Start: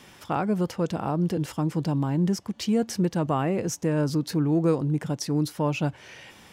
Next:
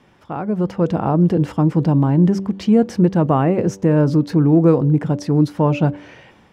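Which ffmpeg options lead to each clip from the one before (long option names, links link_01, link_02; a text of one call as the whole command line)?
ffmpeg -i in.wav -af "lowpass=frequency=1100:poles=1,bandreject=frequency=97.08:width_type=h:width=4,bandreject=frequency=194.16:width_type=h:width=4,bandreject=frequency=291.24:width_type=h:width=4,bandreject=frequency=388.32:width_type=h:width=4,bandreject=frequency=485.4:width_type=h:width=4,bandreject=frequency=582.48:width_type=h:width=4,dynaudnorm=framelen=180:gausssize=7:maxgain=11dB" out.wav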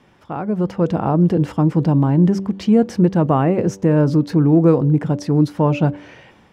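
ffmpeg -i in.wav -af anull out.wav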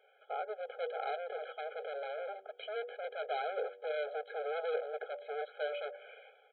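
ffmpeg -i in.wav -af "aresample=8000,asoftclip=type=hard:threshold=-21dB,aresample=44100,afftfilt=real='re*eq(mod(floor(b*sr/1024/420),2),1)':imag='im*eq(mod(floor(b*sr/1024/420),2),1)':win_size=1024:overlap=0.75,volume=-7.5dB" out.wav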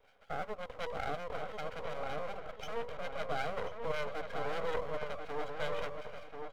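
ffmpeg -i in.wav -filter_complex "[0:a]acrossover=split=710[link_01][link_02];[link_01]aeval=exprs='val(0)*(1-0.7/2+0.7/2*cos(2*PI*5.4*n/s))':channel_layout=same[link_03];[link_02]aeval=exprs='val(0)*(1-0.7/2-0.7/2*cos(2*PI*5.4*n/s))':channel_layout=same[link_04];[link_03][link_04]amix=inputs=2:normalize=0,aeval=exprs='max(val(0),0)':channel_layout=same,asplit=2[link_05][link_06];[link_06]adelay=1037,lowpass=frequency=2700:poles=1,volume=-5.5dB,asplit=2[link_07][link_08];[link_08]adelay=1037,lowpass=frequency=2700:poles=1,volume=0.31,asplit=2[link_09][link_10];[link_10]adelay=1037,lowpass=frequency=2700:poles=1,volume=0.31,asplit=2[link_11][link_12];[link_12]adelay=1037,lowpass=frequency=2700:poles=1,volume=0.31[link_13];[link_05][link_07][link_09][link_11][link_13]amix=inputs=5:normalize=0,volume=7.5dB" out.wav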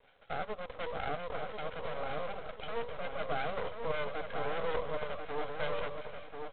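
ffmpeg -i in.wav -af "volume=1.5dB" -ar 8000 -c:a adpcm_g726 -b:a 24k out.wav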